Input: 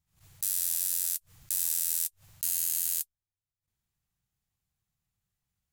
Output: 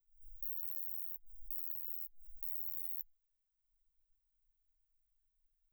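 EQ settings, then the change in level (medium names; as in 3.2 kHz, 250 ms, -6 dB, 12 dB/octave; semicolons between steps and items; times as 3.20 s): inverse Chebyshev band-stop 150–9100 Hz, stop band 80 dB; +18.0 dB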